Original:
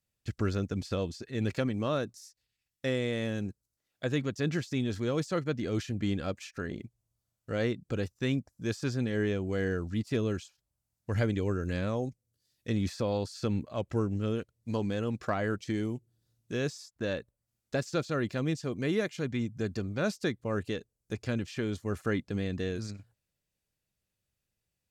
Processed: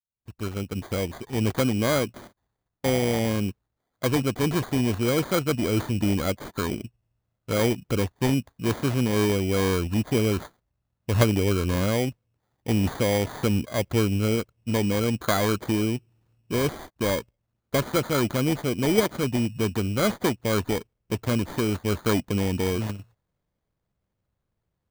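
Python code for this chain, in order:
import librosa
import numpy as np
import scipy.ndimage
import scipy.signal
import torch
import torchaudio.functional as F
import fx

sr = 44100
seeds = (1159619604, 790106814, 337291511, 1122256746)

p1 = fx.fade_in_head(x, sr, length_s=1.63)
p2 = fx.dynamic_eq(p1, sr, hz=160.0, q=5.6, threshold_db=-48.0, ratio=4.0, max_db=-4)
p3 = fx.level_steps(p2, sr, step_db=13)
p4 = p2 + (p3 * 10.0 ** (-2.0 / 20.0))
p5 = fx.env_lowpass(p4, sr, base_hz=1900.0, full_db=-28.5)
p6 = fx.sample_hold(p5, sr, seeds[0], rate_hz=2700.0, jitter_pct=0)
y = p6 * 10.0 ** (5.5 / 20.0)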